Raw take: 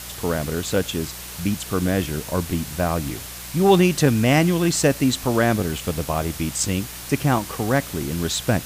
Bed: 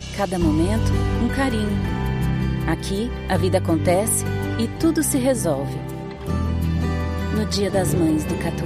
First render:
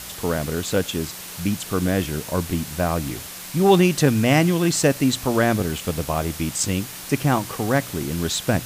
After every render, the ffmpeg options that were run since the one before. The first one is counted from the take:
-af "bandreject=f=60:t=h:w=4,bandreject=f=120:t=h:w=4"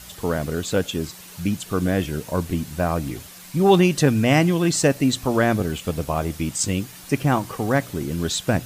-af "afftdn=nr=8:nf=-36"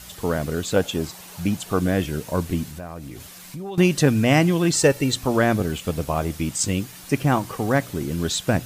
-filter_complex "[0:a]asettb=1/sr,asplit=3[a][b][c];[a]atrim=end=0.764[d];[b]atrim=start=0.76:end=1.8,asetpts=PTS-STARTPTS,afade=t=in:d=0.004:c=qsin,afade=t=out:st=1.036:d=0.004:c=qsin,equalizer=f=760:w=1.5:g=7[e];[c]atrim=start=1.796[f];[d][e]acrossfade=d=0.004:c1=hsin:c2=qsin[g];[g][f]acrossfade=d=0.004:c1=qsin:c2=hsin,asettb=1/sr,asplit=3[h][i][j];[h]atrim=end=2.684[k];[i]atrim=start=2.68:end=3.78,asetpts=PTS-STARTPTS,afade=t=in:d=0.004:c=qsin,afade=t=out:st=1.096:d=0.004:c=qsin,acompressor=threshold=-33dB:ratio=4:attack=3.2:release=140:knee=1:detection=peak[l];[j]atrim=start=3.776[m];[k][l]acrossfade=d=0.004:c1=hsin:c2=qsin[n];[n][m]acrossfade=d=0.004:c1=qsin:c2=hsin,asettb=1/sr,asplit=3[o][p][q];[o]atrim=end=4.734[r];[p]atrim=start=4.73:end=5.16,asetpts=PTS-STARTPTS,afade=t=in:d=0.004:c=qsin,afade=t=out:st=0.426:d=0.004:c=qsin,aecho=1:1:2.2:0.55,atrim=end_sample=18963[s];[q]atrim=start=5.156[t];[r][s]acrossfade=d=0.004:c1=hsin:c2=qsin[u];[u][t]acrossfade=d=0.004:c1=qsin:c2=hsin"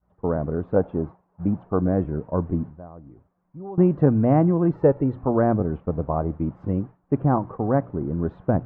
-af "agate=range=-33dB:threshold=-28dB:ratio=3:detection=peak,lowpass=f=1.1k:w=0.5412,lowpass=f=1.1k:w=1.3066"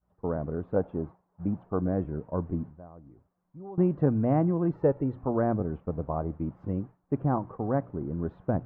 -af "volume=-6.5dB"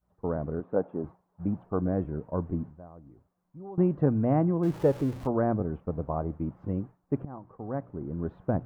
-filter_complex "[0:a]asettb=1/sr,asplit=3[a][b][c];[a]atrim=end=0.604[d];[b]atrim=start=0.6:end=1.04,asetpts=PTS-STARTPTS,afade=t=in:d=0.004:c=qsin,afade=t=out:st=0.436:d=0.004:c=qsin,highpass=180,lowpass=2.1k[e];[c]atrim=start=1.036[f];[d][e]acrossfade=d=0.004:c1=hsin:c2=qsin[g];[g][f]acrossfade=d=0.004:c1=qsin:c2=hsin,asettb=1/sr,asplit=3[h][i][j];[h]atrim=end=4.634[k];[i]atrim=start=4.63:end=5.27,asetpts=PTS-STARTPTS,afade=t=in:d=0.004:c=qsin,afade=t=out:st=0.636:d=0.004:c=qsin,aeval=exprs='val(0)+0.5*0.0106*sgn(val(0))':c=same[l];[j]atrim=start=5.266[m];[k][l]acrossfade=d=0.004:c1=hsin:c2=qsin[n];[n][m]acrossfade=d=0.004:c1=qsin:c2=hsin,asplit=2[o][p];[o]atrim=end=7.25,asetpts=PTS-STARTPTS,afade=t=out:st=7.246:d=0.004:c=hsin:silence=0.105925[q];[p]atrim=start=7.25,asetpts=PTS-STARTPTS,afade=t=in:d=1.1:silence=0.105925[r];[q][r]concat=n=2:v=0:a=1"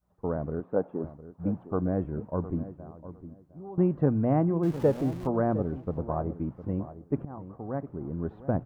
-filter_complex "[0:a]asplit=2[a][b];[b]adelay=708,lowpass=f=1.5k:p=1,volume=-13.5dB,asplit=2[c][d];[d]adelay=708,lowpass=f=1.5k:p=1,volume=0.21[e];[a][c][e]amix=inputs=3:normalize=0"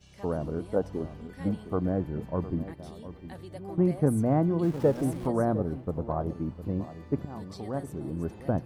-filter_complex "[1:a]volume=-24.5dB[a];[0:a][a]amix=inputs=2:normalize=0"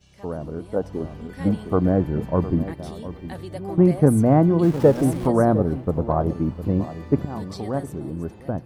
-af "dynaudnorm=f=310:g=7:m=9.5dB"

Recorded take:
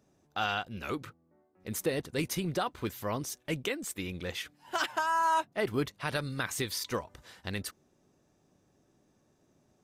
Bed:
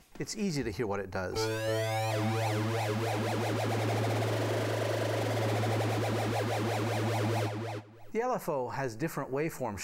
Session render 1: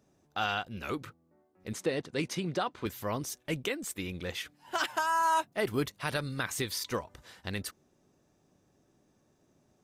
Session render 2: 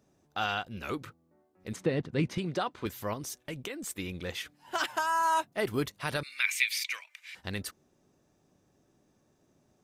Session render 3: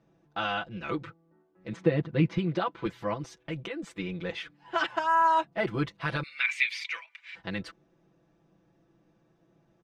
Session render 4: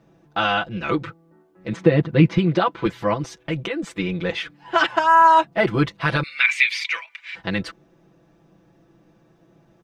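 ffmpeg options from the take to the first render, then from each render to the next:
-filter_complex "[0:a]asettb=1/sr,asplit=3[a][b][c];[a]atrim=end=1.734[d];[b]atrim=start=1.73:end=2.86,asetpts=PTS-STARTPTS,afade=t=in:d=0.004:c=qsin,afade=t=out:st=1.126:d=0.004:c=qsin,highpass=130,lowpass=6.7k[e];[c]atrim=start=2.856[f];[d][e]acrossfade=d=0.004:c1=hsin:c2=qsin[g];[g][f]acrossfade=d=0.004:c1=qsin:c2=hsin,asettb=1/sr,asplit=3[h][i][j];[h]atrim=end=4.854[k];[i]atrim=start=4.85:end=6.14,asetpts=PTS-STARTPTS,afade=t=in:d=0.004:c=qsin,afade=t=out:st=1.286:d=0.004:c=qsin,highshelf=f=6.2k:g=6.5[l];[j]atrim=start=6.136[m];[k][l]acrossfade=d=0.004:c1=hsin:c2=qsin[n];[n][m]acrossfade=d=0.004:c1=qsin:c2=hsin"
-filter_complex "[0:a]asettb=1/sr,asplit=3[a][b][c];[a]atrim=end=1.764[d];[b]atrim=start=1.76:end=2.38,asetpts=PTS-STARTPTS,afade=t=in:d=0.004:c=qsin,afade=t=out:st=0.616:d=0.004:c=qsin,bass=f=250:g=10,treble=f=4k:g=-10[e];[c]atrim=start=2.376[f];[d][e]acrossfade=d=0.004:c1=hsin:c2=qsin[g];[g][f]acrossfade=d=0.004:c1=qsin:c2=hsin,asettb=1/sr,asplit=3[h][i][j];[h]atrim=end=3.134[k];[i]atrim=start=3.13:end=3.84,asetpts=PTS-STARTPTS,afade=t=in:d=0.004:c=qsin,afade=t=out:st=0.706:d=0.004:c=qsin,acompressor=threshold=-34dB:ratio=6:attack=3.2:release=140:knee=1:detection=peak[l];[j]atrim=start=3.836[m];[k][l]acrossfade=d=0.004:c1=hsin:c2=qsin[n];[n][m]acrossfade=d=0.004:c1=qsin:c2=hsin,asettb=1/sr,asplit=3[o][p][q];[o]atrim=end=6.234[r];[p]atrim=start=6.23:end=7.35,asetpts=PTS-STARTPTS,afade=t=in:d=0.004:c=qsin,afade=t=out:st=1.116:d=0.004:c=qsin,highpass=f=2.3k:t=q:w=12[s];[q]atrim=start=7.346[t];[r][s]acrossfade=d=0.004:c1=hsin:c2=qsin[u];[u][t]acrossfade=d=0.004:c1=qsin:c2=hsin"
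-af "lowpass=3k,aecho=1:1:6:0.98"
-af "volume=10dB,alimiter=limit=-3dB:level=0:latency=1"

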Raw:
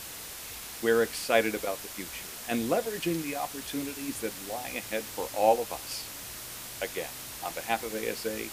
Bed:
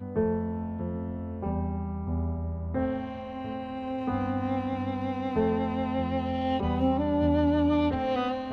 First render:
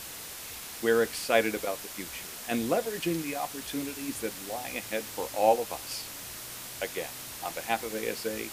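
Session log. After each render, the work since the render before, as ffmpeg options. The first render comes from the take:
-af "bandreject=f=50:t=h:w=4,bandreject=f=100:t=h:w=4"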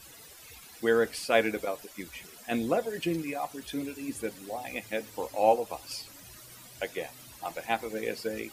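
-af "afftdn=nr=14:nf=-42"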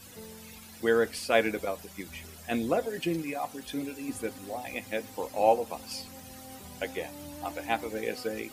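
-filter_complex "[1:a]volume=-20.5dB[a];[0:a][a]amix=inputs=2:normalize=0"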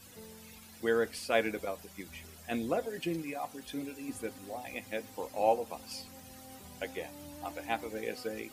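-af "volume=-4.5dB"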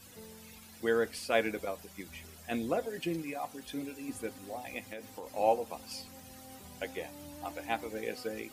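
-filter_complex "[0:a]asettb=1/sr,asplit=3[a][b][c];[a]atrim=end=4.854[d];[b]atrim=start=4.85:end=5.27,asetpts=PTS-STARTPTS,afade=t=in:d=0.004:c=qsin,afade=t=out:st=0.416:d=0.004:c=qsin,acompressor=threshold=-38dB:ratio=6:attack=3.2:release=140:knee=1:detection=peak[e];[c]atrim=start=5.266[f];[d][e]acrossfade=d=0.004:c1=hsin:c2=qsin[g];[g][f]acrossfade=d=0.004:c1=qsin:c2=hsin"

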